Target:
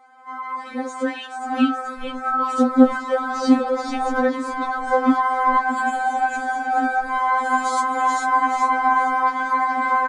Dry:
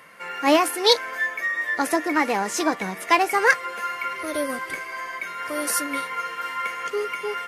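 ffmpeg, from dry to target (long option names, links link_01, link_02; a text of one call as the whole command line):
ffmpeg -i in.wav -filter_complex "[0:a]highpass=frequency=230:width=0.5412,highpass=frequency=230:width=1.3066,asplit=2[link_01][link_02];[link_02]asplit=5[link_03][link_04][link_05][link_06][link_07];[link_03]adelay=316,afreqshift=-110,volume=-5dB[link_08];[link_04]adelay=632,afreqshift=-220,volume=-13.6dB[link_09];[link_05]adelay=948,afreqshift=-330,volume=-22.3dB[link_10];[link_06]adelay=1264,afreqshift=-440,volume=-30.9dB[link_11];[link_07]adelay=1580,afreqshift=-550,volume=-39.5dB[link_12];[link_08][link_09][link_10][link_11][link_12]amix=inputs=5:normalize=0[link_13];[link_01][link_13]amix=inputs=2:normalize=0,flanger=delay=1.1:depth=5.9:regen=40:speed=1.5:shape=triangular,alimiter=limit=-16dB:level=0:latency=1:release=298,asetrate=32667,aresample=44100,dynaudnorm=framelen=350:gausssize=9:maxgain=10.5dB,bandreject=frequency=2800:width=14,acrossover=split=430[link_14][link_15];[link_15]acompressor=threshold=-22dB:ratio=4[link_16];[link_14][link_16]amix=inputs=2:normalize=0,highshelf=frequency=2500:gain=-11.5,afftfilt=real='re*3.46*eq(mod(b,12),0)':imag='im*3.46*eq(mod(b,12),0)':win_size=2048:overlap=0.75,volume=3dB" out.wav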